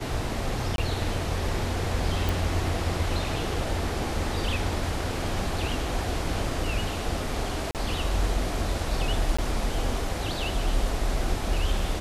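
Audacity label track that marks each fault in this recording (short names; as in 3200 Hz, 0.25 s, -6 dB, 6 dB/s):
0.760000	0.780000	gap 22 ms
2.290000	2.290000	pop
7.710000	7.750000	gap 38 ms
9.370000	9.380000	gap 15 ms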